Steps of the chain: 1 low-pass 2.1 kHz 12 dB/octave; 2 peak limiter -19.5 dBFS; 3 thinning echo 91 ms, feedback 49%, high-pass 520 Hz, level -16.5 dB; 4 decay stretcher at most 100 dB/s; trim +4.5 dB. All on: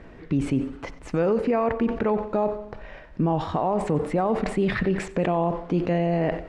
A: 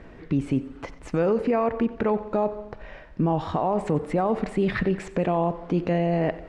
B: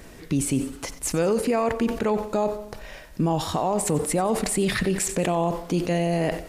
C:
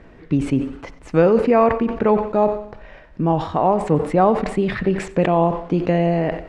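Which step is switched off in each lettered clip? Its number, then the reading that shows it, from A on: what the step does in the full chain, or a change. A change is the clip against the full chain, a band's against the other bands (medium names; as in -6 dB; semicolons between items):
4, crest factor change -3.0 dB; 1, 4 kHz band +9.0 dB; 2, mean gain reduction 2.5 dB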